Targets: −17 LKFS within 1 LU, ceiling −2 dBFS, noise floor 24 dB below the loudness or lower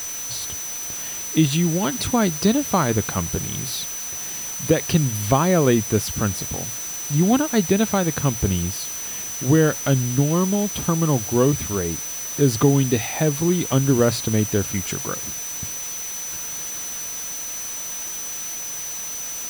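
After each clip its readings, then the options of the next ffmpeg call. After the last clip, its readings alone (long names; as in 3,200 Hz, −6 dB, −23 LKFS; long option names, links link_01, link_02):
interfering tone 6,000 Hz; level of the tone −29 dBFS; background noise floor −30 dBFS; target noise floor −46 dBFS; integrated loudness −21.5 LKFS; sample peak −4.0 dBFS; target loudness −17.0 LKFS
→ -af "bandreject=frequency=6000:width=30"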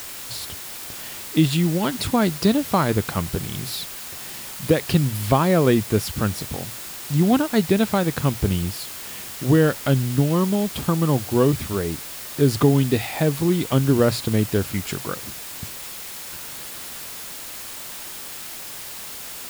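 interfering tone none found; background noise floor −35 dBFS; target noise floor −47 dBFS
→ -af "afftdn=noise_reduction=12:noise_floor=-35"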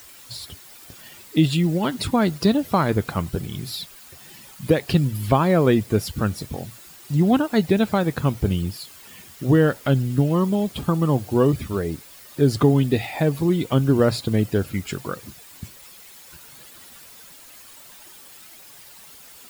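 background noise floor −45 dBFS; target noise floor −46 dBFS
→ -af "afftdn=noise_reduction=6:noise_floor=-45"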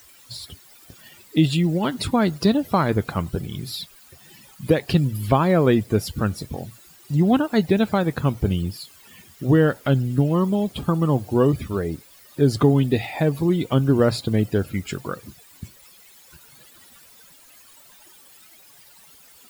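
background noise floor −50 dBFS; integrated loudness −21.5 LKFS; sample peak −4.5 dBFS; target loudness −17.0 LKFS
→ -af "volume=4.5dB,alimiter=limit=-2dB:level=0:latency=1"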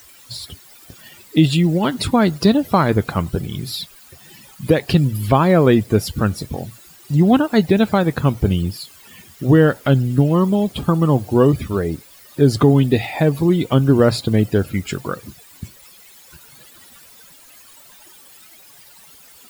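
integrated loudness −17.0 LKFS; sample peak −2.0 dBFS; background noise floor −46 dBFS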